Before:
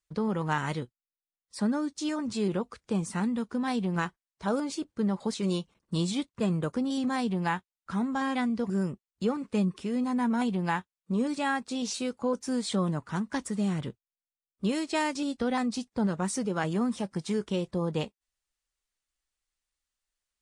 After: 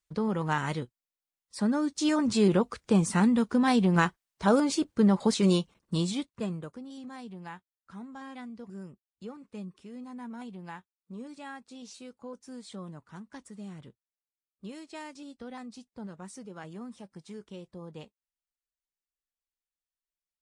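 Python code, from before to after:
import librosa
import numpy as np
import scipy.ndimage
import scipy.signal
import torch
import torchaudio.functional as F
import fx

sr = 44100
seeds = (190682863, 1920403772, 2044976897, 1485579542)

y = fx.gain(x, sr, db=fx.line((1.62, 0.0), (2.16, 6.0), (5.46, 6.0), (6.42, -4.5), (6.8, -14.0)))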